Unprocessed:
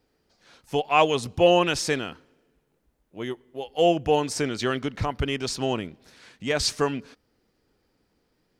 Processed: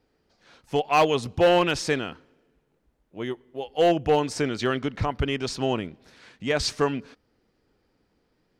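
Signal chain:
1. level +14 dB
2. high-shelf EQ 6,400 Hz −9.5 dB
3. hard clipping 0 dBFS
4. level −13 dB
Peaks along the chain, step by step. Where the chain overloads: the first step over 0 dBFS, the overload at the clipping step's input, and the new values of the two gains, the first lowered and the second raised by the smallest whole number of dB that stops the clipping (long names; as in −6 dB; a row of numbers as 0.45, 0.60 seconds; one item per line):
+8.5, +8.0, 0.0, −13.0 dBFS
step 1, 8.0 dB
step 1 +6 dB, step 4 −5 dB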